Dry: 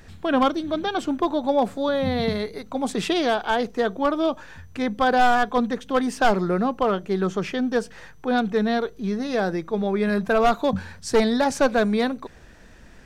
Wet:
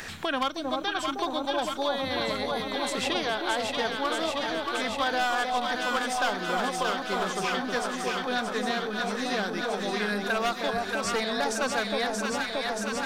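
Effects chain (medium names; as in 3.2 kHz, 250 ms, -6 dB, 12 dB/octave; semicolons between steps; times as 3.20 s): tilt shelf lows -8 dB, about 870 Hz; echo whose repeats swap between lows and highs 314 ms, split 980 Hz, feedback 85%, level -3 dB; three bands compressed up and down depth 70%; trim -7.5 dB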